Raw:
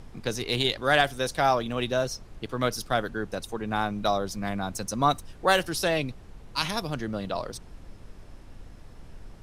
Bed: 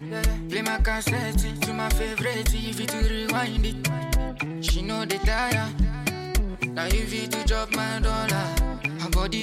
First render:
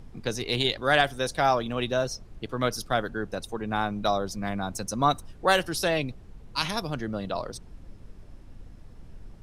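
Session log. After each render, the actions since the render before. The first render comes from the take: noise reduction 6 dB, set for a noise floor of -48 dBFS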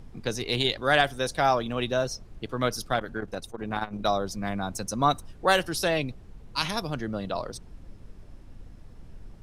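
2.94–4.04 s: transformer saturation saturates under 600 Hz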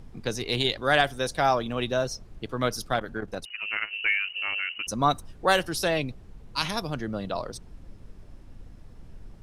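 3.45–4.87 s: frequency inversion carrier 2.9 kHz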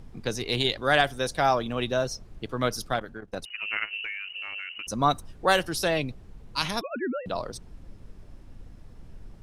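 2.87–3.33 s: fade out, to -15.5 dB; 4.03–4.90 s: compression 3:1, threshold -34 dBFS; 6.81–7.26 s: formants replaced by sine waves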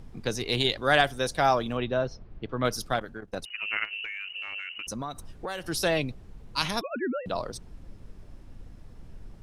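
1.77–2.65 s: distance through air 260 m; 3.84–5.69 s: compression, threshold -31 dBFS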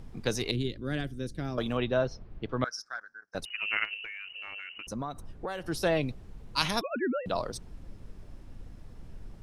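0.51–1.58 s: FFT filter 320 Hz 0 dB, 800 Hz -25 dB, 1.6 kHz -16 dB; 2.64–3.35 s: two resonant band-passes 2.9 kHz, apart 1.8 oct; 3.94–6.03 s: treble shelf 2.2 kHz -9 dB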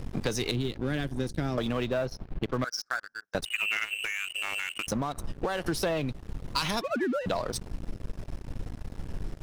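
waveshaping leveller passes 3; compression 10:1, threshold -26 dBFS, peak gain reduction 13 dB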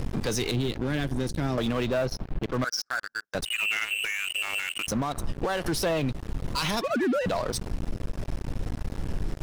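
waveshaping leveller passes 2; peak limiter -20.5 dBFS, peak gain reduction 7.5 dB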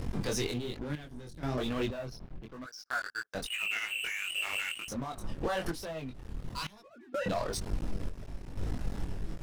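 chorus voices 2, 1.1 Hz, delay 22 ms, depth 3.1 ms; random-step tremolo 2.1 Hz, depth 95%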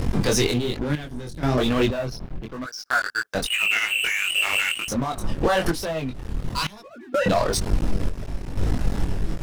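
trim +12 dB

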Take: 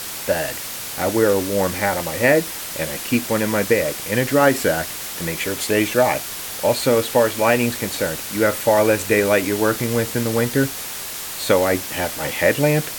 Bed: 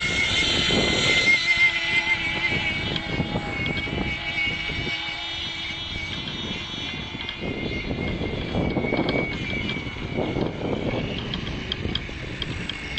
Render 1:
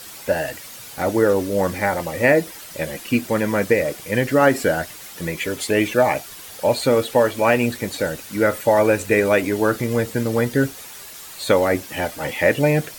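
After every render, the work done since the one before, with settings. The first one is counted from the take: noise reduction 10 dB, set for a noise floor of -30 dBFS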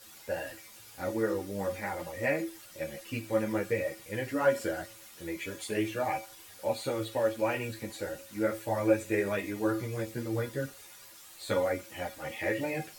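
feedback comb 110 Hz, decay 0.36 s, harmonics odd, mix 80%; three-phase chorus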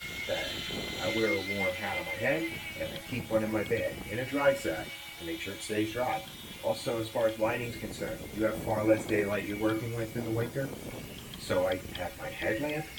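add bed -15.5 dB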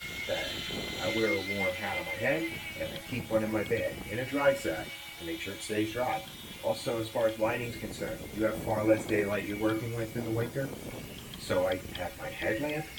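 no audible change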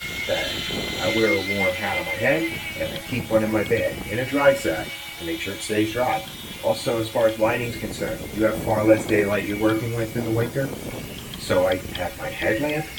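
trim +9 dB

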